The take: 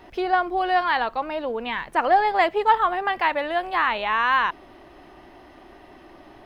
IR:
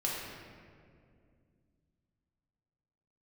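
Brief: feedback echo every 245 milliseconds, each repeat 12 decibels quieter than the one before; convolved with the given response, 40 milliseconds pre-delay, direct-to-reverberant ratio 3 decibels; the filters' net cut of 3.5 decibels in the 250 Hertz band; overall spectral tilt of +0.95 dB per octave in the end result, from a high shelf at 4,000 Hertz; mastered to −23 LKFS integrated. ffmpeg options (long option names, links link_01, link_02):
-filter_complex "[0:a]equalizer=frequency=250:width_type=o:gain=-6,highshelf=frequency=4000:gain=4,aecho=1:1:245|490|735:0.251|0.0628|0.0157,asplit=2[link_01][link_02];[1:a]atrim=start_sample=2205,adelay=40[link_03];[link_02][link_03]afir=irnorm=-1:irlink=0,volume=-8.5dB[link_04];[link_01][link_04]amix=inputs=2:normalize=0,volume=-3dB"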